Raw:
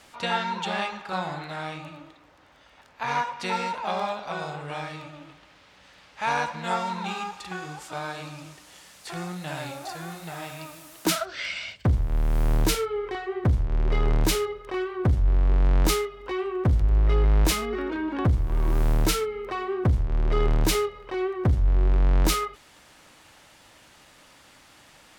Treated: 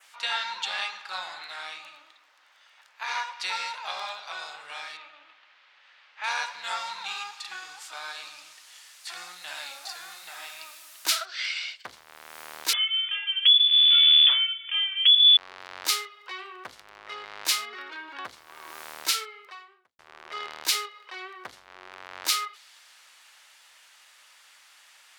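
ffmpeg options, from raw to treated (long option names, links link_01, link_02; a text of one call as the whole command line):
ffmpeg -i in.wav -filter_complex "[0:a]asettb=1/sr,asplit=3[link_01][link_02][link_03];[link_01]atrim=end=4.974[link_04];[link_02]atrim=start=4.97:end=6.24,asetpts=PTS-STARTPTS,afade=type=in:duration=0.004:curve=qsin,afade=type=out:start_time=1.266:duration=0.004:curve=qsin,highpass=160,lowpass=3200[link_05];[link_03]atrim=start=6.236[link_06];[link_04][link_05]acrossfade=duration=0.004:curve1=hsin:curve2=qsin[link_07];[link_07][link_06]acrossfade=duration=0.004:curve1=qsin:curve2=hsin,asettb=1/sr,asplit=3[link_08][link_09][link_10];[link_08]atrim=end=12.734[link_11];[link_09]atrim=start=12.73:end=15.37,asetpts=PTS-STARTPTS,afade=type=in:duration=0.004:curve=qsin,afade=type=out:start_time=2.636:duration=0.004:curve=qsin,lowpass=frequency=3000:width_type=q:width=0.5098,lowpass=frequency=3000:width_type=q:width=0.6013,lowpass=frequency=3000:width_type=q:width=0.9,lowpass=frequency=3000:width_type=q:width=2.563,afreqshift=-3500[link_12];[link_10]atrim=start=15.366[link_13];[link_11][link_12]acrossfade=duration=0.004:curve1=hsin:curve2=qsin[link_14];[link_14][link_13]acrossfade=duration=0.004:curve1=qsin:curve2=hsin,asplit=2[link_15][link_16];[link_15]atrim=end=19.99,asetpts=PTS-STARTPTS,afade=type=out:start_time=19.29:duration=0.7:curve=qua[link_17];[link_16]atrim=start=19.99,asetpts=PTS-STARTPTS,afade=type=in:duration=0.004:curve=hsin[link_18];[link_17][link_18]concat=n=2:v=0:a=1,adynamicequalizer=threshold=0.00355:dfrequency=4400:dqfactor=1.6:tfrequency=4400:tqfactor=1.6:attack=5:release=100:ratio=0.375:range=3:mode=boostabove:tftype=bell,highpass=1300" out.wav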